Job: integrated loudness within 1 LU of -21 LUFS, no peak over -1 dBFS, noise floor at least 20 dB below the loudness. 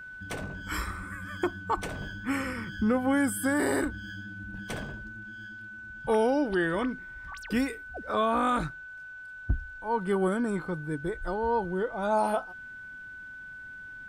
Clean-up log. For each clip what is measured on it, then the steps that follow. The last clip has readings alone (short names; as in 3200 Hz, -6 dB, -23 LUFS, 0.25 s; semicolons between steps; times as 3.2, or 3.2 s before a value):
steady tone 1500 Hz; tone level -41 dBFS; loudness -30.0 LUFS; peak -16.0 dBFS; loudness target -21.0 LUFS
-> notch 1500 Hz, Q 30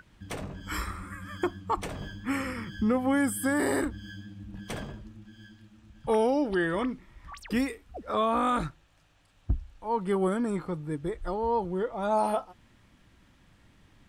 steady tone none; loudness -30.0 LUFS; peak -16.0 dBFS; loudness target -21.0 LUFS
-> gain +9 dB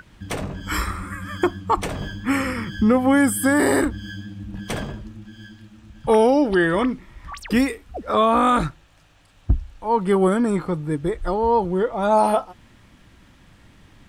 loudness -21.0 LUFS; peak -7.0 dBFS; noise floor -53 dBFS